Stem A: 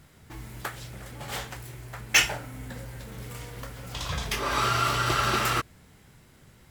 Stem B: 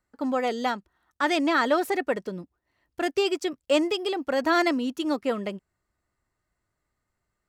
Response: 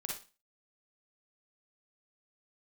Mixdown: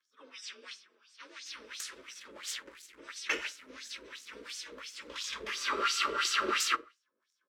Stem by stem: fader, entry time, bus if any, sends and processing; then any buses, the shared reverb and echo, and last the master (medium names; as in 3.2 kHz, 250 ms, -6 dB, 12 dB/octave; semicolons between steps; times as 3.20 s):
+1.5 dB, 1.15 s, send -9.5 dB, no echo send, crossover distortion -45.5 dBFS; level rider gain up to 4 dB
-13.5 dB, 0.00 s, send -3 dB, echo send -14.5 dB, frequency axis rescaled in octaves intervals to 91%; high-pass 130 Hz; spectrum-flattening compressor 10:1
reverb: on, RT60 0.30 s, pre-delay 39 ms
echo: delay 463 ms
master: static phaser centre 310 Hz, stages 4; LFO band-pass sine 2.9 Hz 480–6700 Hz